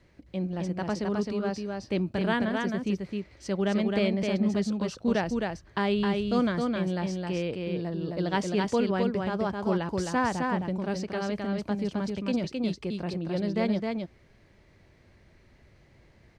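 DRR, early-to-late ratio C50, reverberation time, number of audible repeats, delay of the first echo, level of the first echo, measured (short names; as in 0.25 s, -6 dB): none, none, none, 1, 0.263 s, -3.5 dB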